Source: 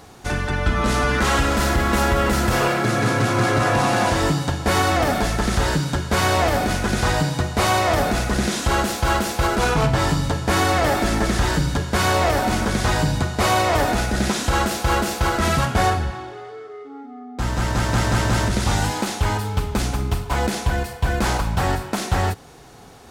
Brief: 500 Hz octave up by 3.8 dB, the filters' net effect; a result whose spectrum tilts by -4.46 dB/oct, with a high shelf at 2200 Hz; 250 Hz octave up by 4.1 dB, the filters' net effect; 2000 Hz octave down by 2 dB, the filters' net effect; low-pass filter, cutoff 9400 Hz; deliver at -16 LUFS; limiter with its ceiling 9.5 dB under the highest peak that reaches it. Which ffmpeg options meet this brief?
-af "lowpass=9.4k,equalizer=f=250:t=o:g=4.5,equalizer=f=500:t=o:g=3.5,equalizer=f=2k:t=o:g=-6.5,highshelf=f=2.2k:g=6.5,volume=8dB,alimiter=limit=-7dB:level=0:latency=1"

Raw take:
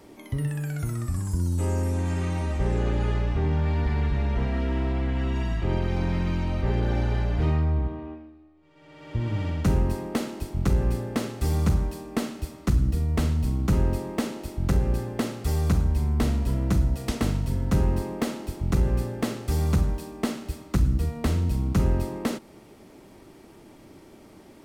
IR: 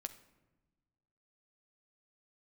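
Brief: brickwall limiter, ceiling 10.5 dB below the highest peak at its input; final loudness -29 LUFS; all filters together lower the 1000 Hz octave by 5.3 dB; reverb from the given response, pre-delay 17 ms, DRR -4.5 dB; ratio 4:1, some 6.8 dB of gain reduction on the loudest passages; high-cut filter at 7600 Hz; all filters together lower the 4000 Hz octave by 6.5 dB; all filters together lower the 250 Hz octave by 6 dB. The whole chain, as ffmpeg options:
-filter_complex "[0:a]lowpass=7.6k,equalizer=f=250:t=o:g=-8.5,equalizer=f=1k:t=o:g=-6,equalizer=f=4k:t=o:g=-8,acompressor=threshold=-26dB:ratio=4,alimiter=level_in=5dB:limit=-24dB:level=0:latency=1,volume=-5dB,asplit=2[a][b];[1:a]atrim=start_sample=2205,adelay=17[c];[b][c]afir=irnorm=-1:irlink=0,volume=7.5dB[d];[a][d]amix=inputs=2:normalize=0,volume=2.5dB"

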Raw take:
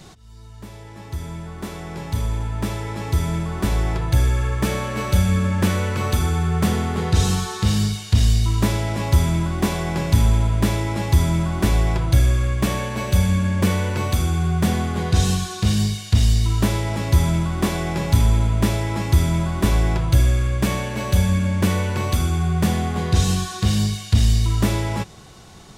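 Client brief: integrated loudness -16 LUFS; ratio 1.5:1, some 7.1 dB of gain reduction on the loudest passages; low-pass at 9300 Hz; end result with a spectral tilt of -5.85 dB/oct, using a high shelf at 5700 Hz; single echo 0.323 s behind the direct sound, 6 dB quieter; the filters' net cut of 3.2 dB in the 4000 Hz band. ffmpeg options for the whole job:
-af "lowpass=9.3k,equalizer=f=4k:t=o:g=-6,highshelf=f=5.7k:g=5.5,acompressor=threshold=-30dB:ratio=1.5,aecho=1:1:323:0.501,volume=9.5dB"

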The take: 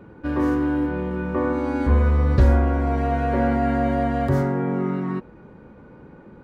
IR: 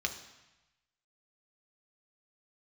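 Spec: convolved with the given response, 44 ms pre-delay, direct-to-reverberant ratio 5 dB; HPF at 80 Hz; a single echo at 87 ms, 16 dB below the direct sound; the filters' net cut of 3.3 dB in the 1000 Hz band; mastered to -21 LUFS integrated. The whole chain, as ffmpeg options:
-filter_complex "[0:a]highpass=80,equalizer=f=1k:t=o:g=-5.5,aecho=1:1:87:0.158,asplit=2[a][b];[1:a]atrim=start_sample=2205,adelay=44[c];[b][c]afir=irnorm=-1:irlink=0,volume=-9dB[d];[a][d]amix=inputs=2:normalize=0,volume=1dB"

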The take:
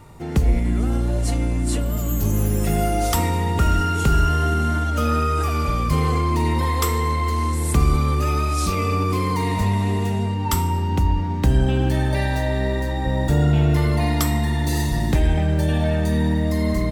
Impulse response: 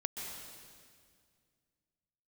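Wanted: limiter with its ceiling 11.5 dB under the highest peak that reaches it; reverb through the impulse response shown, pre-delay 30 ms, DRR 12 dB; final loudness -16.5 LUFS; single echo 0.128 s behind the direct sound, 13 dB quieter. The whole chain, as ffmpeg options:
-filter_complex "[0:a]alimiter=limit=-18.5dB:level=0:latency=1,aecho=1:1:128:0.224,asplit=2[a][b];[1:a]atrim=start_sample=2205,adelay=30[c];[b][c]afir=irnorm=-1:irlink=0,volume=-13.5dB[d];[a][d]amix=inputs=2:normalize=0,volume=10dB"

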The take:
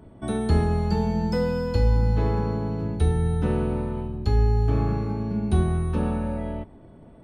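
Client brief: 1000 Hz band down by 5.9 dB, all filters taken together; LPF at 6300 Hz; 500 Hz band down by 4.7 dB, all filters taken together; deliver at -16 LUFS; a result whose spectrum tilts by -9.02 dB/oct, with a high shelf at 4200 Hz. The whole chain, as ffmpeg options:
-af "lowpass=6.3k,equalizer=f=500:t=o:g=-4.5,equalizer=f=1k:t=o:g=-5.5,highshelf=f=4.2k:g=-6,volume=9.5dB"

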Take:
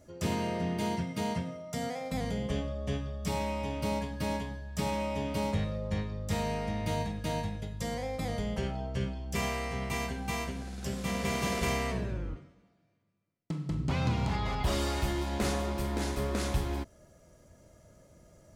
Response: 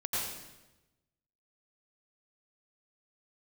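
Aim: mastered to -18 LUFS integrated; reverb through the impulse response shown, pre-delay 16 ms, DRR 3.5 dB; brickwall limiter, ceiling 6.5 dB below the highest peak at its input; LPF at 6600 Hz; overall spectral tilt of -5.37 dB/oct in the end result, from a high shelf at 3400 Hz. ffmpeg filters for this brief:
-filter_complex "[0:a]lowpass=6.6k,highshelf=f=3.4k:g=4,alimiter=limit=-24dB:level=0:latency=1,asplit=2[a][b];[1:a]atrim=start_sample=2205,adelay=16[c];[b][c]afir=irnorm=-1:irlink=0,volume=-9.5dB[d];[a][d]amix=inputs=2:normalize=0,volume=15.5dB"

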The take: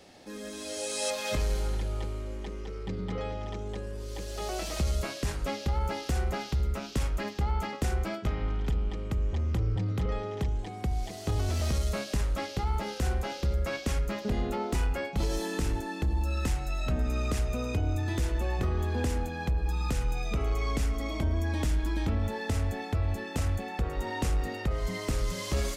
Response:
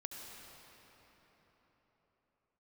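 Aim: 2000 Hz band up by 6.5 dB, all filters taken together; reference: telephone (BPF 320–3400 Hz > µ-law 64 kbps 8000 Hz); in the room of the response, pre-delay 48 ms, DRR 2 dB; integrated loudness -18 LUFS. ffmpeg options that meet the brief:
-filter_complex "[0:a]equalizer=f=2k:t=o:g=8.5,asplit=2[a][b];[1:a]atrim=start_sample=2205,adelay=48[c];[b][c]afir=irnorm=-1:irlink=0,volume=0dB[d];[a][d]amix=inputs=2:normalize=0,highpass=320,lowpass=3.4k,volume=15.5dB" -ar 8000 -c:a pcm_mulaw

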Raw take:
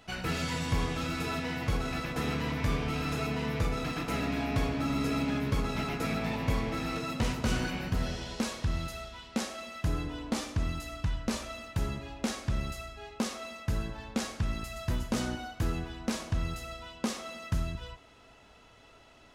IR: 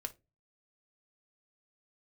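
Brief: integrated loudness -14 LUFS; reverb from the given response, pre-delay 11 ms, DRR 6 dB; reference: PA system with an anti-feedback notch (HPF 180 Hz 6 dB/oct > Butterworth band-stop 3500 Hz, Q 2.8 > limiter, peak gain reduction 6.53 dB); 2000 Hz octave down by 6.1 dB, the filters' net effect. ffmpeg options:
-filter_complex "[0:a]equalizer=f=2k:t=o:g=-8,asplit=2[a][b];[1:a]atrim=start_sample=2205,adelay=11[c];[b][c]afir=irnorm=-1:irlink=0,volume=-4dB[d];[a][d]amix=inputs=2:normalize=0,highpass=f=180:p=1,asuperstop=centerf=3500:order=8:qfactor=2.8,volume=23.5dB,alimiter=limit=-3dB:level=0:latency=1"

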